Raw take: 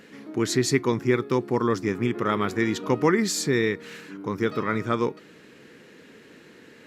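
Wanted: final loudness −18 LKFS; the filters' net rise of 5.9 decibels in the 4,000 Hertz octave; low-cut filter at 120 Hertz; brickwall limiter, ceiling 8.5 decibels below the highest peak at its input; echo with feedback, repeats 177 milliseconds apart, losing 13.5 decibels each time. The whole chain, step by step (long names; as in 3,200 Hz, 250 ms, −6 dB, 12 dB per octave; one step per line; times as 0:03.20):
high-pass filter 120 Hz
parametric band 4,000 Hz +7 dB
brickwall limiter −16 dBFS
repeating echo 177 ms, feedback 21%, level −13.5 dB
level +9.5 dB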